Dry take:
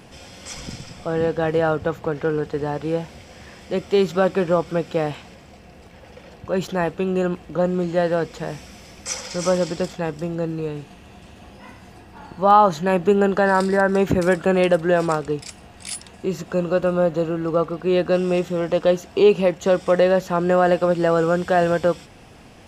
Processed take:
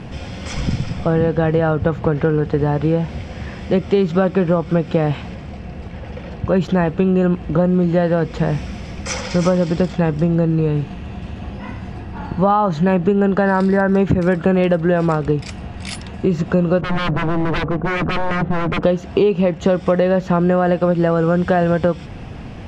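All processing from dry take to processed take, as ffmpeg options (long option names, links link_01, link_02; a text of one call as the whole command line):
ffmpeg -i in.wav -filter_complex "[0:a]asettb=1/sr,asplit=3[link_01][link_02][link_03];[link_01]atrim=end=16.814[link_04];[link_02]atrim=start=16.81:end=18.83,asetpts=PTS-STARTPTS,afade=type=in:duration=0.004:curve=qsin,afade=type=out:start_time=2.016:duration=0.004:curve=qsin,lowpass=1000,aeval=exprs='0.0596*(abs(mod(val(0)/0.0596+3,4)-2)-1)':channel_layout=same[link_05];[link_03]atrim=start=18.826[link_06];[link_04][link_05]acrossfade=duration=0.004:curve1=hsin:curve2=qsin[link_07];[link_07][link_06]acrossfade=duration=0.004:curve1=qsin:curve2=hsin,lowpass=7000,bass=frequency=250:gain=9,treble=frequency=4000:gain=-8,acompressor=threshold=-21dB:ratio=6,volume=8.5dB" out.wav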